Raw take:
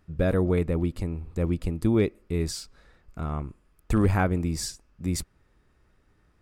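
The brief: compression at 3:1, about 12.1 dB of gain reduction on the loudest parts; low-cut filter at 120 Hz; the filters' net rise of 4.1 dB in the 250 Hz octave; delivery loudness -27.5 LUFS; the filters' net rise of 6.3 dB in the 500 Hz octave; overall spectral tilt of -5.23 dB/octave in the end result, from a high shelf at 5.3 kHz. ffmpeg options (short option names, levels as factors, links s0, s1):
-af "highpass=120,equalizer=f=250:t=o:g=4,equalizer=f=500:t=o:g=6.5,highshelf=f=5300:g=6.5,acompressor=threshold=0.0282:ratio=3,volume=2.11"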